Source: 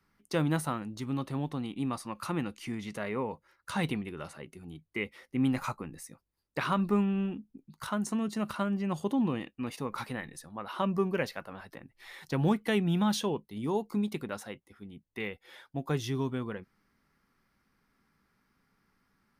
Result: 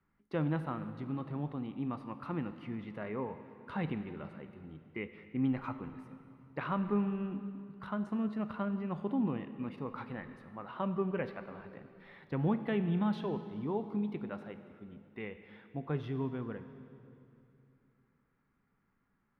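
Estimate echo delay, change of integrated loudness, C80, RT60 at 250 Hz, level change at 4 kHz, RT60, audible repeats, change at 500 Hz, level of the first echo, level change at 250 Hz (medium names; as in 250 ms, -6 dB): no echo, -4.5 dB, 11.5 dB, 3.1 s, -14.0 dB, 2.6 s, no echo, -4.5 dB, no echo, -3.5 dB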